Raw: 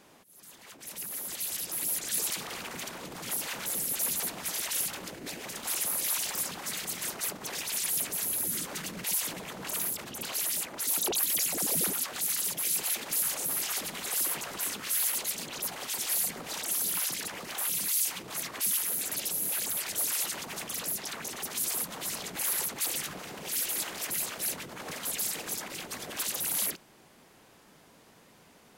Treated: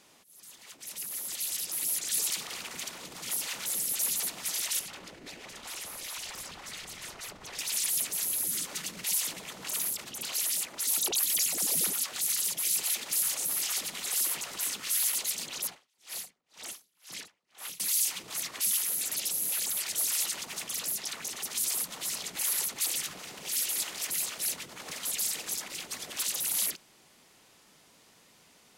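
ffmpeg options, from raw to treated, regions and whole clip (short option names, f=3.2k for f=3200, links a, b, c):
-filter_complex "[0:a]asettb=1/sr,asplit=3[a][b][c];[a]atrim=end=4.794[d];[b]atrim=start=4.79:end=7.59,asetpts=PTS-STARTPTS,afade=t=in:d=0.004:c=qsin,afade=t=out:st=2.796:d=0.004:c=qsin,lowpass=f=2.2k:p=1,asubboost=boost=7.5:cutoff=85[e];[c]atrim=start=7.586[f];[d][e]acrossfade=d=0.004:c1=hsin:c2=qsin[g];[g][f]acrossfade=d=0.004:c1=qsin:c2=hsin,asettb=1/sr,asplit=3[h][i][j];[h]atrim=end=15.674[k];[i]atrim=start=15.67:end=17.8,asetpts=PTS-STARTPTS,afade=t=in:d=0.004:c=qsin,afade=t=out:st=2.126:d=0.004:c=qsin,lowpass=f=3.3k:p=1,aeval=exprs='val(0)*pow(10,-39*(0.5-0.5*cos(2*PI*2*n/s))/20)':c=same[l];[j]atrim=start=17.796[m];[k][l]acrossfade=d=0.004:c1=hsin:c2=qsin[n];[n][m]acrossfade=d=0.004:c1=qsin:c2=hsin,equalizer=f=6k:w=0.31:g=9.5,bandreject=f=1.6k:w=21,volume=-6.5dB"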